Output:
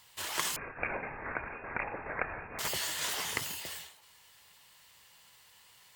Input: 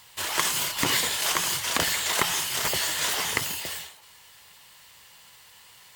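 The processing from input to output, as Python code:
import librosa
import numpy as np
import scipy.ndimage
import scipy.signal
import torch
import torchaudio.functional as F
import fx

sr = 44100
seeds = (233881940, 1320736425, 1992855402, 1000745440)

y = fx.freq_invert(x, sr, carrier_hz=2600, at=(0.56, 2.59))
y = y * 10.0 ** (-8.0 / 20.0)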